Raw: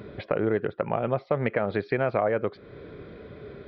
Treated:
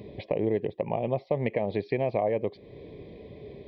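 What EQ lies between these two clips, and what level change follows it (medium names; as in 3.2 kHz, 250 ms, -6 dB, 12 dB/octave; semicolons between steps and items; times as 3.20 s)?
Butterworth band-stop 1.4 kHz, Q 1.3; -1.5 dB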